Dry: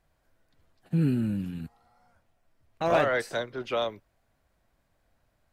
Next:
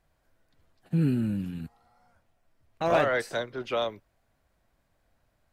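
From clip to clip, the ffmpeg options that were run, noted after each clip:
-af anull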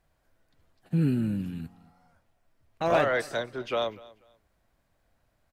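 -af "aecho=1:1:243|486:0.0841|0.0202"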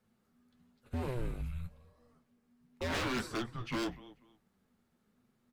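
-af "aeval=exprs='0.0531*(abs(mod(val(0)/0.0531+3,4)-2)-1)':c=same,afreqshift=-250,flanger=delay=7.6:depth=5.1:regen=-44:speed=0.93:shape=triangular"

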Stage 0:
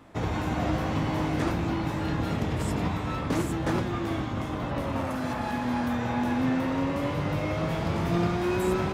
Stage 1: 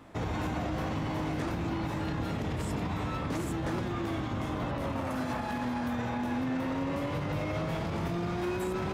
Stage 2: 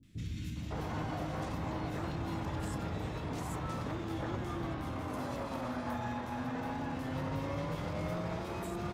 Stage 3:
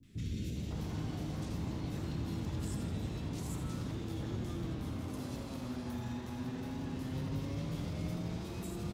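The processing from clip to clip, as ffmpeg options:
-af "alimiter=level_in=0.5dB:limit=-24dB:level=0:latency=1:release=61,volume=-0.5dB"
-filter_complex "[0:a]acrossover=split=260|2400[a][b][c];[c]adelay=30[d];[b]adelay=560[e];[a][e][d]amix=inputs=3:normalize=0,volume=-3.5dB"
-filter_complex "[0:a]asplit=7[a][b][c][d][e][f][g];[b]adelay=81,afreqshift=130,volume=-8.5dB[h];[c]adelay=162,afreqshift=260,volume=-14dB[i];[d]adelay=243,afreqshift=390,volume=-19.5dB[j];[e]adelay=324,afreqshift=520,volume=-25dB[k];[f]adelay=405,afreqshift=650,volume=-30.6dB[l];[g]adelay=486,afreqshift=780,volume=-36.1dB[m];[a][h][i][j][k][l][m]amix=inputs=7:normalize=0,acrossover=split=320|3000[n][o][p];[o]acompressor=threshold=-57dB:ratio=3[q];[n][q][p]amix=inputs=3:normalize=0,volume=1dB"

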